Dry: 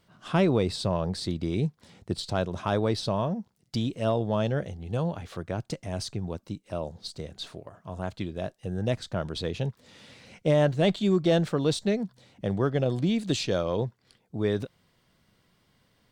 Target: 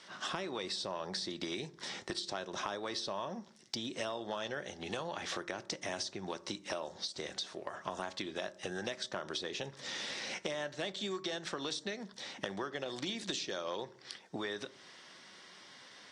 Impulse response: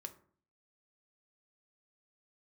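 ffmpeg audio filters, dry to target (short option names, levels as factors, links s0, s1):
-filter_complex "[0:a]highpass=420,equalizer=f=470:t=q:w=4:g=-5,equalizer=f=670:t=q:w=4:g=-4,equalizer=f=1800:t=q:w=4:g=6,equalizer=f=3600:t=q:w=4:g=5,equalizer=f=5600:t=q:w=4:g=9,lowpass=f=8700:w=0.5412,lowpass=f=8700:w=1.3066,acompressor=threshold=0.00631:ratio=4,asplit=2[s0][s1];[1:a]atrim=start_sample=2205[s2];[s1][s2]afir=irnorm=-1:irlink=0,volume=1.12[s3];[s0][s3]amix=inputs=2:normalize=0,acrossover=split=800|6700[s4][s5][s6];[s4]acompressor=threshold=0.00447:ratio=4[s7];[s5]acompressor=threshold=0.00447:ratio=4[s8];[s6]acompressor=threshold=0.00158:ratio=4[s9];[s7][s8][s9]amix=inputs=3:normalize=0,volume=2.37" -ar 48000 -c:a aac -b:a 48k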